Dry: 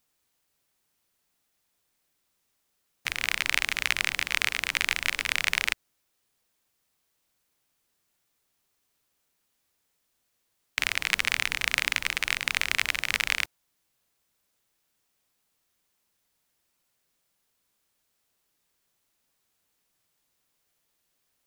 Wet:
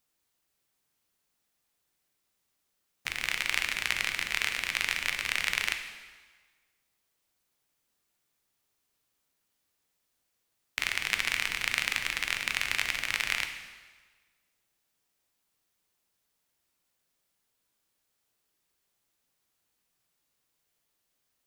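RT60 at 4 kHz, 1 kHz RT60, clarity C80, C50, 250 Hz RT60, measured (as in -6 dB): 1.3 s, 1.4 s, 9.5 dB, 8.0 dB, 1.3 s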